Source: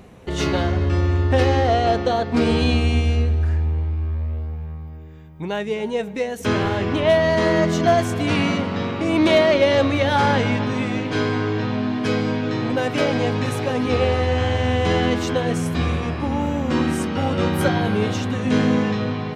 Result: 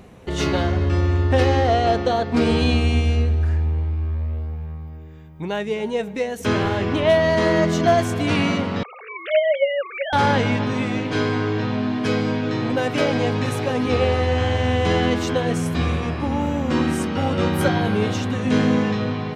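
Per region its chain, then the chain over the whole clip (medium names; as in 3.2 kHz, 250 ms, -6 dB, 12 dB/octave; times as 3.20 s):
8.83–10.13 s: formants replaced by sine waves + inverse Chebyshev high-pass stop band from 250 Hz, stop band 50 dB
whole clip: none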